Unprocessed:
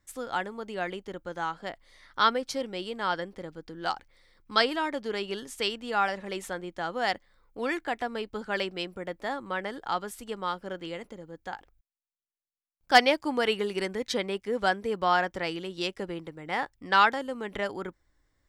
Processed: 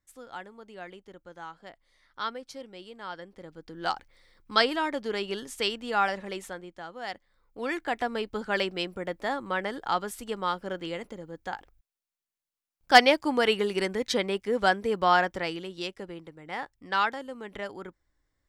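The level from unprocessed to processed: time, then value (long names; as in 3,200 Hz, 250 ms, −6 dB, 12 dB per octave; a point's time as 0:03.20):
0:03.14 −10 dB
0:03.86 +1 dB
0:06.18 +1 dB
0:06.95 −10 dB
0:08.01 +2.5 dB
0:15.19 +2.5 dB
0:16.03 −5 dB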